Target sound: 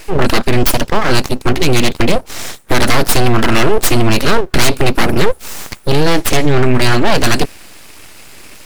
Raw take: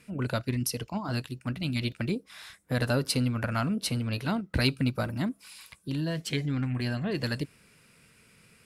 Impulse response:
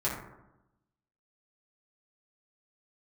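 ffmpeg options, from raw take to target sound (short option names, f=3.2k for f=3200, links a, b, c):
-af "apsyclip=26.5dB,aeval=exprs='abs(val(0))':c=same,volume=-2dB"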